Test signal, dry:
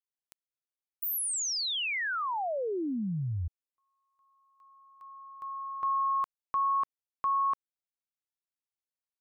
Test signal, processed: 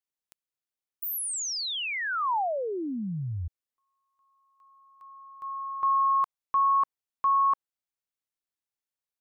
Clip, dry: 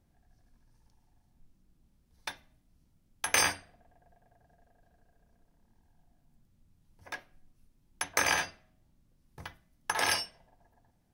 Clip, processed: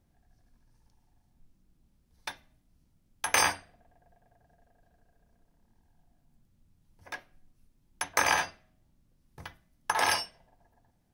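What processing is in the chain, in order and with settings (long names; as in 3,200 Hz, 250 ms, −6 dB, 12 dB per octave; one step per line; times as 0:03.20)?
dynamic equaliser 930 Hz, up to +6 dB, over −42 dBFS, Q 1.3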